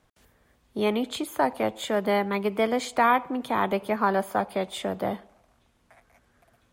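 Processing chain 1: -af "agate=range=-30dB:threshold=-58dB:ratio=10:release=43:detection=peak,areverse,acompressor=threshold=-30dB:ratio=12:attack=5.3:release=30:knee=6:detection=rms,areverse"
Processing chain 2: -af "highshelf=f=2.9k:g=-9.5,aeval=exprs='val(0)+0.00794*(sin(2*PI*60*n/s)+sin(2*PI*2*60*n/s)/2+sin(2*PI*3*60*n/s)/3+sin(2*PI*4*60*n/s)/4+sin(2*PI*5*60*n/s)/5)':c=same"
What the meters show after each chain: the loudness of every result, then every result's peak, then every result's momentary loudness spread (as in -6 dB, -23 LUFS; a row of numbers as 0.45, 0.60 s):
-35.0, -27.0 LUFS; -22.0, -10.0 dBFS; 3, 21 LU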